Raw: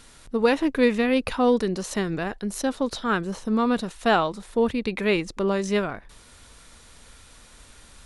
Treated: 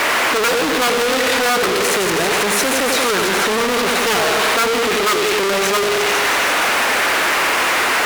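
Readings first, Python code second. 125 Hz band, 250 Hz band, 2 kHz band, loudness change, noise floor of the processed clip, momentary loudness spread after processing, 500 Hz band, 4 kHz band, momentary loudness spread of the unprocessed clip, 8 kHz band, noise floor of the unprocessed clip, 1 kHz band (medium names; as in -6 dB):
+0.5 dB, 0.0 dB, +16.0 dB, +9.0 dB, -17 dBFS, 1 LU, +7.0 dB, +18.0 dB, 7 LU, +20.0 dB, -51 dBFS, +12.0 dB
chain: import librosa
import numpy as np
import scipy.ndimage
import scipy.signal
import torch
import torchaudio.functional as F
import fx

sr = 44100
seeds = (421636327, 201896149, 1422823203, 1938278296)

y = fx.peak_eq(x, sr, hz=430.0, db=13.0, octaves=0.4)
y = fx.echo_wet_highpass(y, sr, ms=164, feedback_pct=76, hz=2200.0, wet_db=-4)
y = fx.dmg_noise_band(y, sr, seeds[0], low_hz=240.0, high_hz=2400.0, level_db=-33.0)
y = fx.echo_feedback(y, sr, ms=90, feedback_pct=56, wet_db=-8)
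y = (np.mod(10.0 ** (8.0 / 20.0) * y + 1.0, 2.0) - 1.0) / 10.0 ** (8.0 / 20.0)
y = scipy.signal.sosfilt(scipy.signal.butter(4, 69.0, 'highpass', fs=sr, output='sos'), y)
y = fx.fuzz(y, sr, gain_db=41.0, gate_db=-43.0)
y = fx.low_shelf(y, sr, hz=330.0, db=-10.5)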